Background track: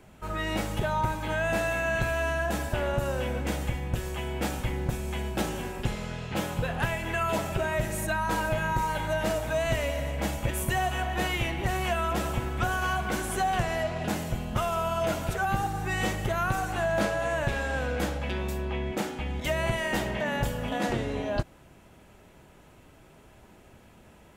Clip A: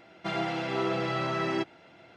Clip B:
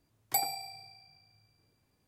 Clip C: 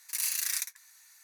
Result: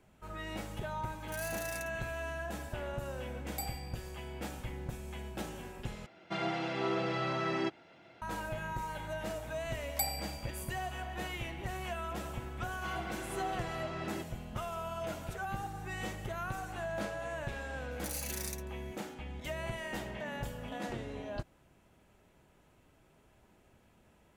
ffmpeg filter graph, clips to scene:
ffmpeg -i bed.wav -i cue0.wav -i cue1.wav -i cue2.wav -filter_complex "[3:a]asplit=2[link_01][link_02];[2:a]asplit=2[link_03][link_04];[1:a]asplit=2[link_05][link_06];[0:a]volume=-11dB[link_07];[link_04]highpass=830[link_08];[link_07]asplit=2[link_09][link_10];[link_09]atrim=end=6.064[link_11];[link_05]atrim=end=2.16,asetpts=PTS-STARTPTS,volume=-4dB[link_12];[link_10]atrim=start=8.216[link_13];[link_01]atrim=end=1.23,asetpts=PTS-STARTPTS,volume=-14.5dB,afade=type=in:duration=0.004:curve=hsin,afade=type=out:start_time=1.226:duration=0.004:curve=hsin,adelay=1190[link_14];[link_03]atrim=end=2.07,asetpts=PTS-STARTPTS,volume=-10.5dB,afade=type=in:duration=0.004:curve=hsin,afade=type=out:start_time=2.066:duration=0.004:curve=hsin,adelay=3240[link_15];[link_08]atrim=end=2.07,asetpts=PTS-STARTPTS,volume=-3dB,afade=type=in:duration=0.004:curve=hsin,afade=type=out:start_time=2.066:duration=0.004:curve=hsin,adelay=9650[link_16];[link_06]atrim=end=2.16,asetpts=PTS-STARTPTS,volume=-12.5dB,afade=type=in:duration=0.004:curve=hsin,afade=type=out:start_time=2.156:duration=0.004:curve=hsin,adelay=12590[link_17];[link_02]atrim=end=1.23,asetpts=PTS-STARTPTS,volume=-10dB,afade=type=in:duration=0.004:curve=hsin,afade=type=out:start_time=1.226:duration=0.004:curve=hsin,adelay=17910[link_18];[link_11][link_12]acrossfade=duration=0.004:curve1=hsin:curve2=hsin[link_19];[link_19][link_13]acrossfade=duration=0.004:curve1=hsin:curve2=hsin[link_20];[link_20][link_14][link_15][link_16][link_17][link_18]amix=inputs=6:normalize=0" out.wav

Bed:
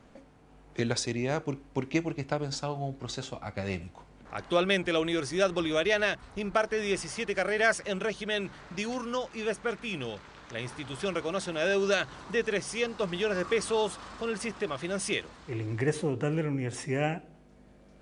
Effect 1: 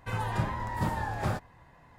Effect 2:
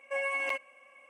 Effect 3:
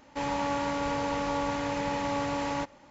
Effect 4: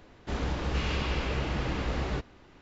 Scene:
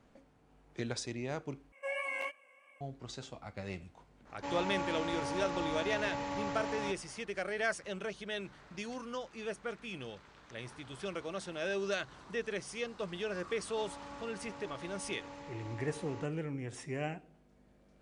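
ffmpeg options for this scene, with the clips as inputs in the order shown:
ffmpeg -i bed.wav -i cue0.wav -i cue1.wav -i cue2.wav -filter_complex "[3:a]asplit=2[link_01][link_02];[0:a]volume=-8.5dB[link_03];[2:a]flanger=delay=16.5:depth=5.8:speed=2.9[link_04];[link_01]highpass=42[link_05];[link_02]alimiter=limit=-23dB:level=0:latency=1:release=320[link_06];[link_03]asplit=2[link_07][link_08];[link_07]atrim=end=1.724[link_09];[link_04]atrim=end=1.09,asetpts=PTS-STARTPTS,volume=-2.5dB[link_10];[link_08]atrim=start=2.806[link_11];[link_05]atrim=end=2.9,asetpts=PTS-STARTPTS,volume=-7.5dB,afade=type=in:duration=0.004:curve=hsin,afade=type=out:start_time=2.896:duration=0.004:curve=hsin,adelay=4270[link_12];[link_06]atrim=end=2.9,asetpts=PTS-STARTPTS,volume=-16dB,afade=type=in:duration=0.004:curve=hsin,afade=type=out:start_time=2.896:duration=0.004:curve=hsin,adelay=13610[link_13];[link_09][link_10]acrossfade=duration=0.004:curve1=hsin:curve2=hsin[link_14];[link_14][link_11]acrossfade=duration=0.004:curve1=hsin:curve2=hsin[link_15];[link_15][link_12][link_13]amix=inputs=3:normalize=0" out.wav

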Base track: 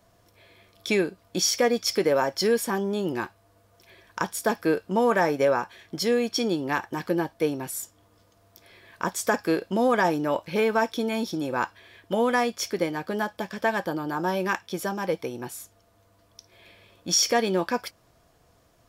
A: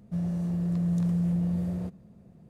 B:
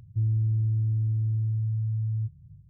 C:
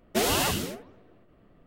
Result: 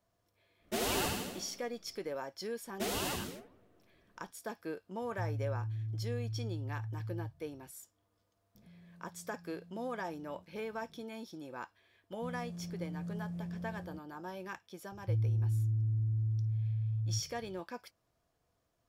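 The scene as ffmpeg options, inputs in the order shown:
ffmpeg -i bed.wav -i cue0.wav -i cue1.wav -i cue2.wav -filter_complex "[3:a]asplit=2[link_01][link_02];[2:a]asplit=2[link_03][link_04];[1:a]asplit=2[link_05][link_06];[0:a]volume=-17.5dB[link_07];[link_01]aecho=1:1:78|156|234|312|390|468|546:0.562|0.315|0.176|0.0988|0.0553|0.031|0.0173[link_08];[link_05]acompressor=threshold=-50dB:ratio=6:attack=3.2:release=140:knee=1:detection=peak[link_09];[link_08]atrim=end=1.66,asetpts=PTS-STARTPTS,volume=-10dB,afade=type=in:duration=0.1,afade=type=out:start_time=1.56:duration=0.1,adelay=570[link_10];[link_02]atrim=end=1.66,asetpts=PTS-STARTPTS,volume=-11dB,afade=type=in:duration=0.004:curve=hsin,afade=type=out:start_time=1.656:duration=0.004:curve=hsin,adelay=2650[link_11];[link_03]atrim=end=2.69,asetpts=PTS-STARTPTS,volume=-12.5dB,afade=type=in:duration=0.004:curve=hsin,afade=type=out:start_time=2.686:duration=0.004:curve=hsin,adelay=5020[link_12];[link_09]atrim=end=2.49,asetpts=PTS-STARTPTS,volume=-8dB,afade=type=in:duration=0.004:curve=hsin,afade=type=out:start_time=2.486:duration=0.004:curve=hsin,adelay=8550[link_13];[link_06]atrim=end=2.49,asetpts=PTS-STARTPTS,volume=-14.5dB,afade=type=in:duration=0.004:curve=hsin,afade=type=out:start_time=2.486:duration=0.004:curve=hsin,adelay=12100[link_14];[link_04]atrim=end=2.69,asetpts=PTS-STARTPTS,volume=-6dB,afade=type=in:duration=0.004:curve=hsin,afade=type=out:start_time=2.686:duration=0.004:curve=hsin,adelay=657972S[link_15];[link_07][link_10][link_11][link_12][link_13][link_14][link_15]amix=inputs=7:normalize=0" out.wav

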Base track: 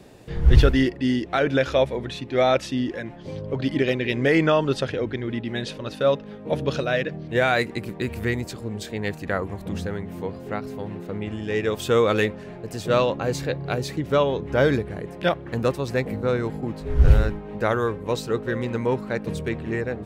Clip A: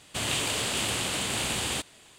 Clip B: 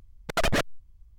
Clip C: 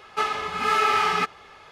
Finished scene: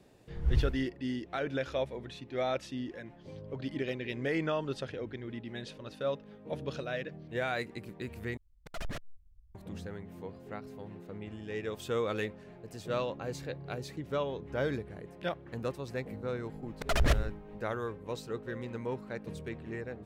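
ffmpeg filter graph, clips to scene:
ffmpeg -i bed.wav -i cue0.wav -i cue1.wav -filter_complex "[2:a]asplit=2[link_01][link_02];[0:a]volume=-13dB[link_03];[link_01]asubboost=boost=7.5:cutoff=240[link_04];[link_03]asplit=2[link_05][link_06];[link_05]atrim=end=8.374[link_07];[link_04]atrim=end=1.18,asetpts=PTS-STARTPTS,volume=-17.5dB[link_08];[link_06]atrim=start=9.546[link_09];[link_02]atrim=end=1.18,asetpts=PTS-STARTPTS,volume=-6dB,afade=type=in:duration=0.004:curve=hsin,afade=type=out:start_time=1.176:duration=0.004:curve=hsin,adelay=728532S[link_10];[link_07][link_08]acrossfade=duration=0.004:curve1=hsin:curve2=hsin[link_11];[link_11][link_09]acrossfade=duration=0.004:curve1=hsin:curve2=hsin[link_12];[link_12][link_10]amix=inputs=2:normalize=0" out.wav

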